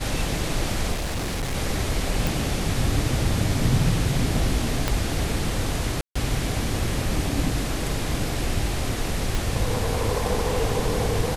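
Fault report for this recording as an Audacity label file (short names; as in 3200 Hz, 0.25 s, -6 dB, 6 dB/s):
0.920000	1.550000	clipped -23.5 dBFS
2.270000	2.270000	pop
4.880000	4.880000	pop -7 dBFS
6.010000	6.160000	gap 0.145 s
9.350000	9.350000	pop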